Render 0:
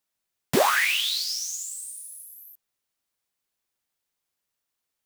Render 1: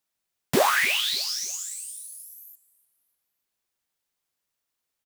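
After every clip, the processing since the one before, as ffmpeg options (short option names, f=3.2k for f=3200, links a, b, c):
-af "aecho=1:1:297|594|891:0.0891|0.0365|0.015"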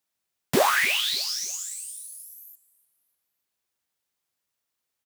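-af "highpass=45"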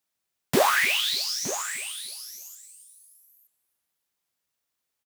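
-af "aecho=1:1:917:0.224"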